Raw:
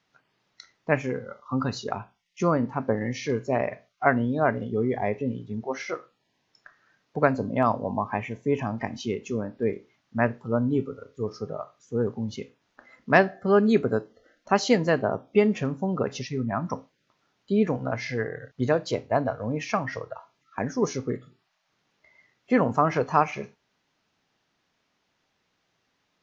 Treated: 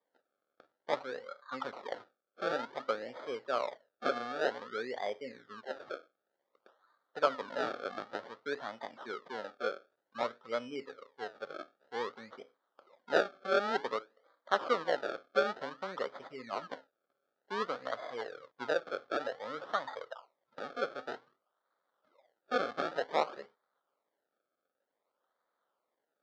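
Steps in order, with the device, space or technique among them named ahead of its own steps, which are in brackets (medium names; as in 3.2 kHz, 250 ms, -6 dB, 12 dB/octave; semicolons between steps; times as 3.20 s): circuit-bent sampling toy (decimation with a swept rate 31×, swing 100% 0.54 Hz; cabinet simulation 500–4400 Hz, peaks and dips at 540 Hz +6 dB, 1.3 kHz +8 dB, 2.6 kHz -9 dB); trim -9 dB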